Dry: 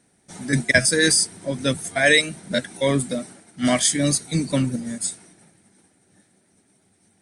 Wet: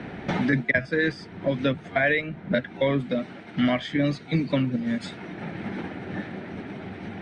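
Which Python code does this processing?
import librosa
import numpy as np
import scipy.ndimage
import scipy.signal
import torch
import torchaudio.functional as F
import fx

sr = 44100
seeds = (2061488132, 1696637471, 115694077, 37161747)

y = scipy.signal.sosfilt(scipy.signal.butter(4, 2900.0, 'lowpass', fs=sr, output='sos'), x)
y = fx.band_squash(y, sr, depth_pct=100)
y = y * librosa.db_to_amplitude(-2.5)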